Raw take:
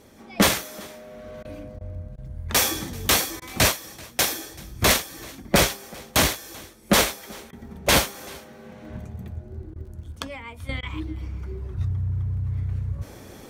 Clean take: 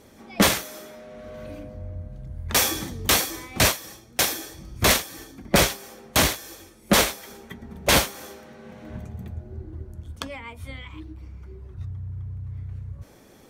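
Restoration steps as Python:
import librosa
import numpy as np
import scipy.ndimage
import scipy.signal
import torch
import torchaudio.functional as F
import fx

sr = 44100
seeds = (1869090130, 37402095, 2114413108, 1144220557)

y = fx.fix_declick_ar(x, sr, threshold=6.5)
y = fx.fix_interpolate(y, sr, at_s=(1.43, 1.79, 2.16, 3.4, 7.51, 9.74, 10.81), length_ms=17.0)
y = fx.fix_echo_inverse(y, sr, delay_ms=385, level_db=-23.5)
y = fx.gain(y, sr, db=fx.steps((0.0, 0.0), (10.69, -8.0)))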